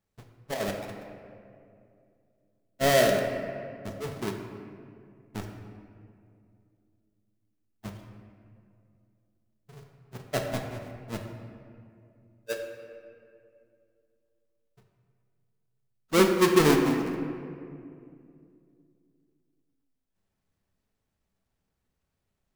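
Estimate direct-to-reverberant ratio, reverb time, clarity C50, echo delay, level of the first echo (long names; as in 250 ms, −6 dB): 2.5 dB, 2.5 s, 5.0 dB, no echo audible, no echo audible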